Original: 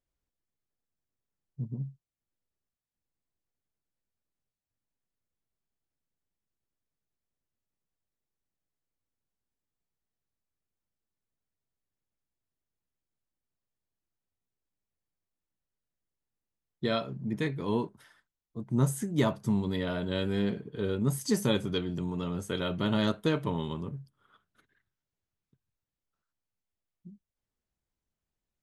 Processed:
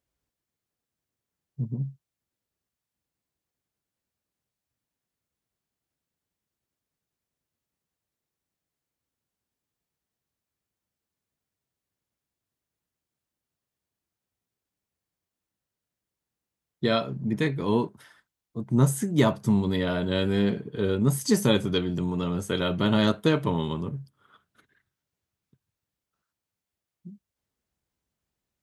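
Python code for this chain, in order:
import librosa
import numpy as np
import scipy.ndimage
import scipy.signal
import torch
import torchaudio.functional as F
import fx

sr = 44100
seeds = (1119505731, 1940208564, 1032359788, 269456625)

y = scipy.signal.sosfilt(scipy.signal.butter(2, 56.0, 'highpass', fs=sr, output='sos'), x)
y = y * 10.0 ** (5.5 / 20.0)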